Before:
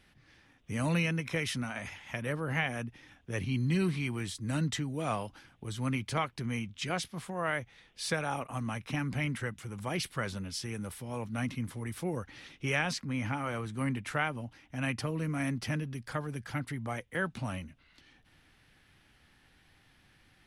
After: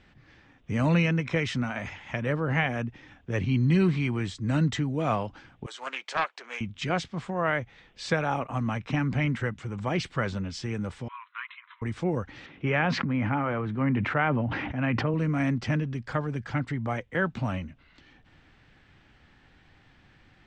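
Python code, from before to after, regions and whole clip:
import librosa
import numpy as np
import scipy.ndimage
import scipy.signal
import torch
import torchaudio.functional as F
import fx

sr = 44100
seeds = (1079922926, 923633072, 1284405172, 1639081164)

y = fx.chain(x, sr, fx.highpass(hz=560.0, slope=24),
    fx.high_shelf(hz=4500.0, db=4.0),
    fx.doppler_dist(depth_ms=0.27), at=(5.66, 6.61))
y = fx.chain(y, sr, fx.brickwall_bandpass(low_hz=930.0, high_hz=4100.0),
    fx.air_absorb(metres=130.0), at=(11.08, 11.82))
y = fx.chain(y, sr, fx.bandpass_edges(low_hz=100.0, high_hz=2500.0),
    fx.sustainer(db_per_s=22.0), at=(12.46, 15.14))
y = scipy.signal.sosfilt(scipy.signal.ellip(4, 1.0, 60, 7700.0, 'lowpass', fs=sr, output='sos'), y)
y = fx.high_shelf(y, sr, hz=3100.0, db=-11.5)
y = F.gain(torch.from_numpy(y), 8.0).numpy()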